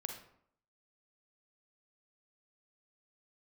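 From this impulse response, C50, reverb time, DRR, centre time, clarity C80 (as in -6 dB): 5.5 dB, 0.65 s, 3.5 dB, 24 ms, 9.5 dB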